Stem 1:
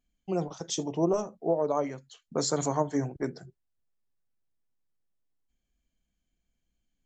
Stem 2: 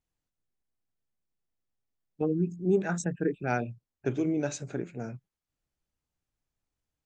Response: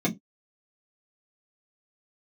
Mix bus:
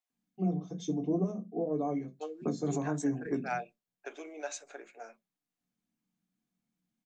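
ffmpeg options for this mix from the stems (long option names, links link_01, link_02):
-filter_complex "[0:a]adelay=100,volume=-8.5dB,asplit=2[link_01][link_02];[link_02]volume=-12dB[link_03];[1:a]highpass=frequency=600:width=0.5412,highpass=frequency=600:width=1.3066,volume=-3.5dB,asplit=3[link_04][link_05][link_06];[link_05]volume=-19.5dB[link_07];[link_06]apad=whole_len=315481[link_08];[link_01][link_08]sidechaingate=range=-33dB:threshold=-56dB:ratio=16:detection=peak[link_09];[2:a]atrim=start_sample=2205[link_10];[link_03][link_07]amix=inputs=2:normalize=0[link_11];[link_11][link_10]afir=irnorm=-1:irlink=0[link_12];[link_09][link_04][link_12]amix=inputs=3:normalize=0,alimiter=limit=-21.5dB:level=0:latency=1:release=237"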